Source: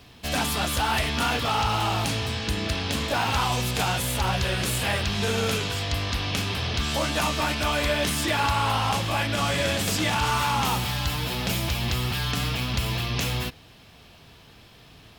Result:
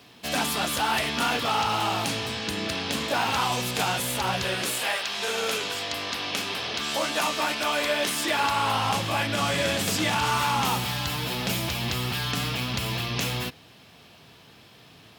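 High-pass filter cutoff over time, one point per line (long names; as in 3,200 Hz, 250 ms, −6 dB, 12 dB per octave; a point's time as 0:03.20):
0:04.49 170 Hz
0:04.99 660 Hz
0:05.73 300 Hz
0:08.24 300 Hz
0:08.88 120 Hz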